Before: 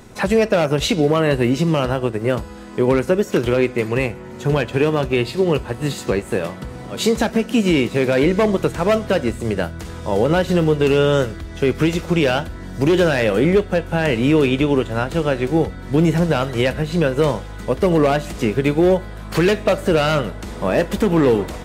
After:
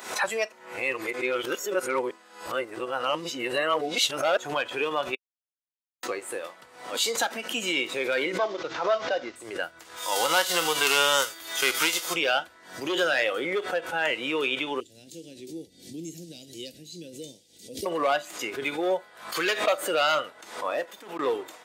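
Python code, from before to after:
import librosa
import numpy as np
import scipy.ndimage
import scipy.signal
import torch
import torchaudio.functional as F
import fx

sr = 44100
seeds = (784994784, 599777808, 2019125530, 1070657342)

y = fx.cvsd(x, sr, bps=32000, at=(8.38, 9.36))
y = fx.envelope_flatten(y, sr, power=0.6, at=(9.96, 12.13), fade=0.02)
y = fx.cheby1_bandstop(y, sr, low_hz=270.0, high_hz=4900.0, order=2, at=(14.8, 17.86))
y = fx.edit(y, sr, fx.reverse_span(start_s=0.52, length_s=3.85),
    fx.silence(start_s=5.15, length_s=0.88),
    fx.fade_out_span(start_s=20.65, length_s=0.54), tone=tone)
y = scipy.signal.sosfilt(scipy.signal.butter(2, 760.0, 'highpass', fs=sr, output='sos'), y)
y = fx.noise_reduce_blind(y, sr, reduce_db=9)
y = fx.pre_swell(y, sr, db_per_s=100.0)
y = y * 10.0 ** (-1.5 / 20.0)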